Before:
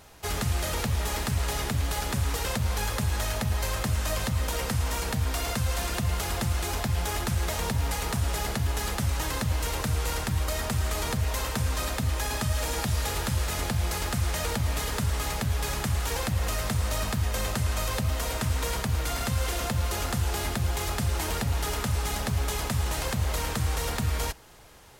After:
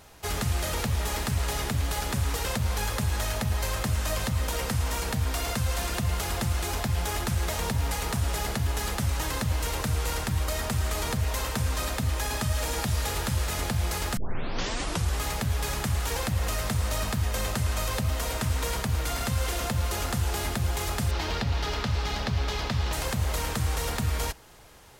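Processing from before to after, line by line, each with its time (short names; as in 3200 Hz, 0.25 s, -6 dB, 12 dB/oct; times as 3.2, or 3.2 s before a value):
14.17 tape start 1.03 s
21.11–22.93 resonant high shelf 6600 Hz -13.5 dB, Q 1.5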